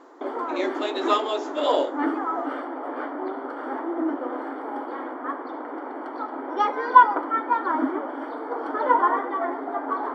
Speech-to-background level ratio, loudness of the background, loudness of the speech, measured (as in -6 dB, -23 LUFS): -0.5 dB, -26.0 LUFS, -26.5 LUFS